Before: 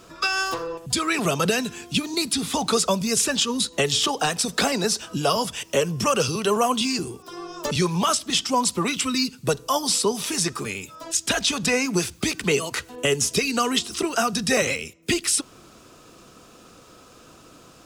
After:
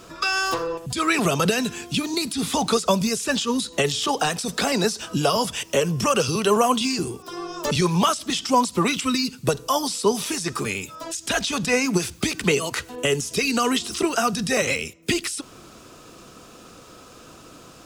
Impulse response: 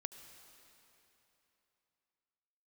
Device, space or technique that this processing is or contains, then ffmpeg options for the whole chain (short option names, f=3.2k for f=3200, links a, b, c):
de-esser from a sidechain: -filter_complex "[0:a]asplit=2[a][b];[b]highpass=6k,apad=whole_len=787604[c];[a][c]sidechaincompress=threshold=-31dB:ratio=8:attack=2.1:release=63,volume=3.5dB"